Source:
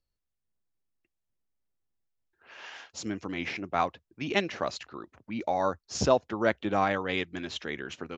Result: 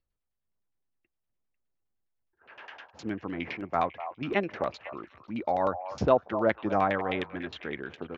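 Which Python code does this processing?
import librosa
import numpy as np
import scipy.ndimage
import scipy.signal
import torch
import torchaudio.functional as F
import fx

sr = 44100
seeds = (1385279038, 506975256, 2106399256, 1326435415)

y = fx.vibrato(x, sr, rate_hz=2.3, depth_cents=18.0)
y = fx.filter_lfo_lowpass(y, sr, shape='saw_down', hz=9.7, low_hz=580.0, high_hz=3700.0, q=1.1)
y = fx.echo_stepped(y, sr, ms=248, hz=820.0, octaves=1.4, feedback_pct=70, wet_db=-9.5)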